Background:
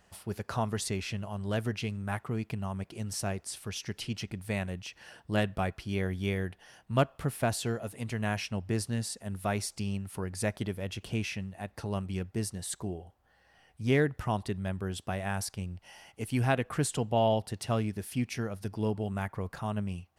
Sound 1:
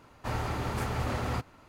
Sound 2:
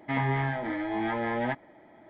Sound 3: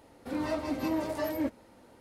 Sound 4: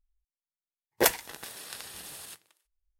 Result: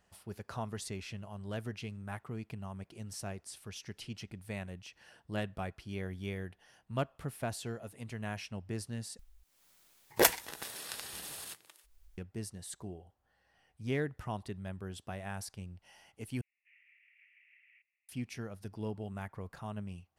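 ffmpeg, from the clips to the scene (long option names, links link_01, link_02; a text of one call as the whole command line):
ffmpeg -i bed.wav -i cue0.wav -i cue1.wav -i cue2.wav -i cue3.wav -filter_complex "[0:a]volume=-8dB[link_01];[4:a]acompressor=mode=upward:threshold=-41dB:ratio=2.5:attack=70:release=373:knee=2.83:detection=peak[link_02];[1:a]asuperpass=centerf=2300:order=8:qfactor=2.7[link_03];[link_01]asplit=3[link_04][link_05][link_06];[link_04]atrim=end=9.194[link_07];[link_02]atrim=end=2.99,asetpts=PTS-STARTPTS,volume=-1.5dB[link_08];[link_05]atrim=start=12.176:end=16.414[link_09];[link_03]atrim=end=1.68,asetpts=PTS-STARTPTS,volume=-17dB[link_10];[link_06]atrim=start=18.086[link_11];[link_07][link_08]acrossfade=duration=0.004:curve1=hsin:curve2=hsin[link_12];[link_12][link_09]acrossfade=duration=0.004:curve1=hsin:curve2=hsin[link_13];[link_13][link_10]acrossfade=duration=0.004:curve1=hsin:curve2=hsin[link_14];[link_14][link_11]acrossfade=duration=0.004:curve1=hsin:curve2=hsin" out.wav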